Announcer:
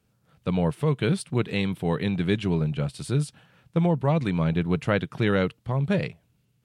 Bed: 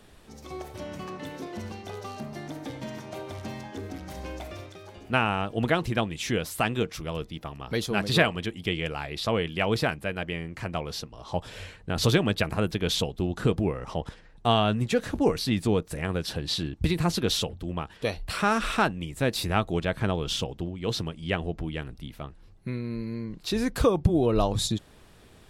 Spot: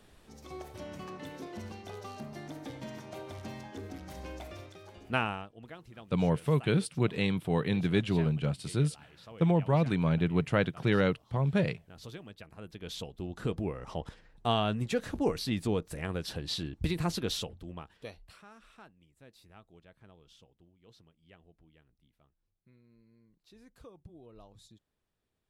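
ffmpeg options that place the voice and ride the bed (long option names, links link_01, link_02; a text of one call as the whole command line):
ffmpeg -i stem1.wav -i stem2.wav -filter_complex "[0:a]adelay=5650,volume=-3.5dB[link_01];[1:a]volume=12dB,afade=type=out:start_time=5.2:duration=0.31:silence=0.125893,afade=type=in:start_time=12.52:duration=1.42:silence=0.133352,afade=type=out:start_time=17.07:duration=1.37:silence=0.0595662[link_02];[link_01][link_02]amix=inputs=2:normalize=0" out.wav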